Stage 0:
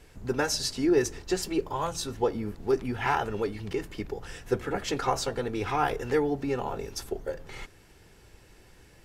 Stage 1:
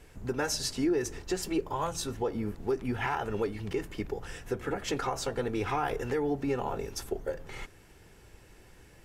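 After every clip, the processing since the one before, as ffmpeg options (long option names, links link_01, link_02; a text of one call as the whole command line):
ffmpeg -i in.wav -af "equalizer=frequency=4400:width_type=o:width=0.77:gain=-3.5,alimiter=limit=-20.5dB:level=0:latency=1:release=154" out.wav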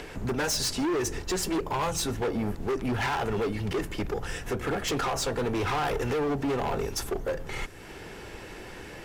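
ffmpeg -i in.wav -filter_complex "[0:a]acrossover=split=190|5000[link_01][link_02][link_03];[link_02]acompressor=mode=upward:threshold=-41dB:ratio=2.5[link_04];[link_01][link_04][link_03]amix=inputs=3:normalize=0,volume=32.5dB,asoftclip=hard,volume=-32.5dB,volume=7.5dB" out.wav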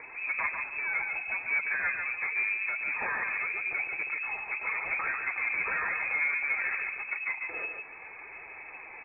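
ffmpeg -i in.wav -filter_complex "[0:a]flanger=delay=3.2:depth=3.9:regen=38:speed=0.89:shape=triangular,asplit=2[link_01][link_02];[link_02]aecho=0:1:144|288|432:0.531|0.133|0.0332[link_03];[link_01][link_03]amix=inputs=2:normalize=0,lowpass=frequency=2200:width_type=q:width=0.5098,lowpass=frequency=2200:width_type=q:width=0.6013,lowpass=frequency=2200:width_type=q:width=0.9,lowpass=frequency=2200:width_type=q:width=2.563,afreqshift=-2600" out.wav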